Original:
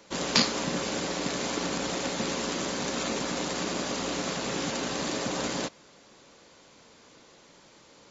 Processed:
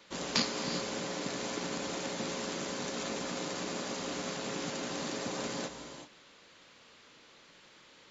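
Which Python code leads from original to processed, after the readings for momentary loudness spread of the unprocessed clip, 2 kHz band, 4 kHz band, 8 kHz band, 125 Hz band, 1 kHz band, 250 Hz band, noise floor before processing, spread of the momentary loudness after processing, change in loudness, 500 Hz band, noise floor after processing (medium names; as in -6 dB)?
5 LU, -6.0 dB, -6.5 dB, no reading, -6.5 dB, -6.5 dB, -6.0 dB, -56 dBFS, 5 LU, -6.0 dB, -5.5 dB, -59 dBFS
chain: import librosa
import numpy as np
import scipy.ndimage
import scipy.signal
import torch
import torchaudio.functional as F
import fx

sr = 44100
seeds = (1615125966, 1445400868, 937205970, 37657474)

y = fx.dmg_noise_band(x, sr, seeds[0], low_hz=1000.0, high_hz=4300.0, level_db=-55.0)
y = fx.rev_gated(y, sr, seeds[1], gate_ms=410, shape='rising', drr_db=8.0)
y = F.gain(torch.from_numpy(y), -7.0).numpy()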